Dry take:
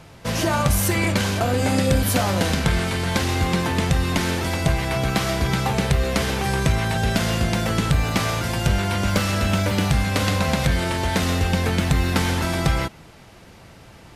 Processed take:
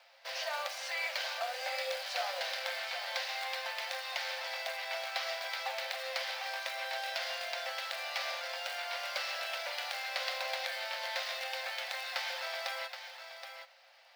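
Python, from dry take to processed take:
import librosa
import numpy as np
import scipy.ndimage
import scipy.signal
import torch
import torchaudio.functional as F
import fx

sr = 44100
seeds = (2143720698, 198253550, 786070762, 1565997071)

y = fx.ladder_lowpass(x, sr, hz=5500.0, resonance_pct=50)
y = fx.quant_float(y, sr, bits=2)
y = scipy.signal.sosfilt(scipy.signal.cheby1(6, 6, 520.0, 'highpass', fs=sr, output='sos'), y)
y = y + 10.0 ** (-9.0 / 20.0) * np.pad(y, (int(773 * sr / 1000.0), 0))[:len(y)]
y = y * 10.0 ** (-1.0 / 20.0)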